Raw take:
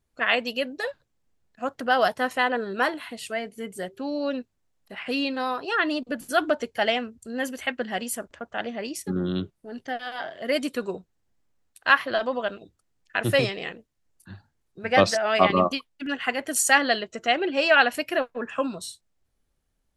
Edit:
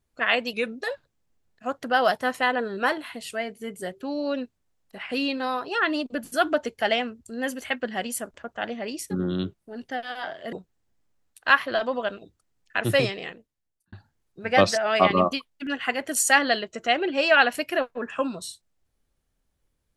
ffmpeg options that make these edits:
-filter_complex "[0:a]asplit=5[a][b][c][d][e];[a]atrim=end=0.534[f];[b]atrim=start=0.53:end=0.78,asetpts=PTS-STARTPTS,asetrate=38808,aresample=44100,atrim=end_sample=12528,asetpts=PTS-STARTPTS[g];[c]atrim=start=0.776:end=10.492[h];[d]atrim=start=10.918:end=14.32,asetpts=PTS-STARTPTS,afade=t=out:st=2.532:d=0.87[i];[e]atrim=start=14.32,asetpts=PTS-STARTPTS,afade=t=in:d=0.004:c=hsin[j];[f][g]acrossfade=d=0.004:c1=hsin:c2=hsin[k];[k][h]acrossfade=d=0.004:c1=hsin:c2=hsin[l];[i][j]concat=n=2:v=0:a=1[m];[l][m]acrossfade=d=0.004:c1=hsin:c2=hsin"

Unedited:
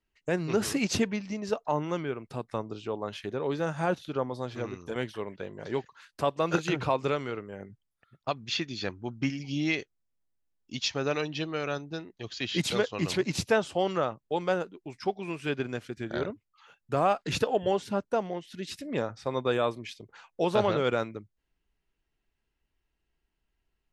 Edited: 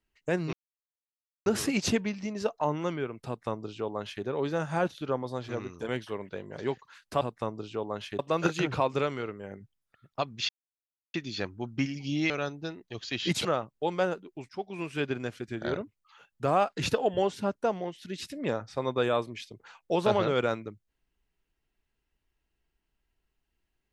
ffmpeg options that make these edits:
-filter_complex "[0:a]asplit=8[a][b][c][d][e][f][g][h];[a]atrim=end=0.53,asetpts=PTS-STARTPTS,afade=t=out:st=0.526:d=0.004:c=hsin,apad=pad_dur=0.93[i];[b]atrim=start=0.53:end=6.282,asetpts=PTS-STARTPTS,afade=t=in:d=0.004:c=hsin[j];[c]atrim=start=2.328:end=3.312[k];[d]atrim=start=6.278:end=8.58,asetpts=PTS-STARTPTS,afade=t=out:st=2.298:d=0.004:c=hsin,apad=pad_dur=0.65[l];[e]atrim=start=8.58:end=9.742,asetpts=PTS-STARTPTS,afade=t=in:d=0.004:c=hsin[m];[f]atrim=start=11.588:end=12.742[n];[g]atrim=start=13.938:end=14.98,asetpts=PTS-STARTPTS,afade=t=out:st=1.038:d=0.004:c=hsin:silence=0.251189[o];[h]atrim=start=14.98,asetpts=PTS-STARTPTS,afade=t=in:d=0.34:silence=0.251189[p];[i][j]concat=n=2:v=0:a=1[q];[q][k]acrossfade=d=0.004:c1=hsin:c2=hsin[r];[l][m]concat=n=2:v=0:a=1[s];[r][s]acrossfade=d=0.004:c1=hsin:c2=hsin[t];[t][n]acrossfade=d=0.004:c1=hsin:c2=hsin[u];[o][p]concat=n=2:v=0:a=1[v];[u][v]acrossfade=d=0.004:c1=hsin:c2=hsin"

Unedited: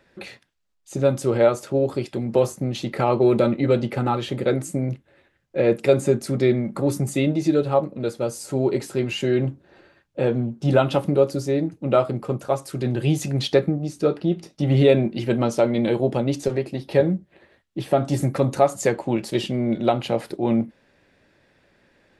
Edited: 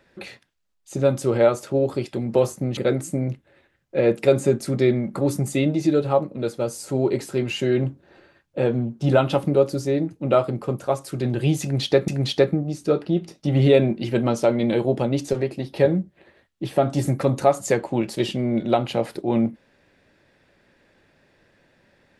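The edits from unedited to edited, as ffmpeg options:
-filter_complex "[0:a]asplit=3[a][b][c];[a]atrim=end=2.772[d];[b]atrim=start=4.378:end=13.692[e];[c]atrim=start=13.228[f];[d][e]acrossfade=d=0.004:c1=hsin:c2=hsin[g];[g][f]acrossfade=d=0.004:c1=hsin:c2=hsin"

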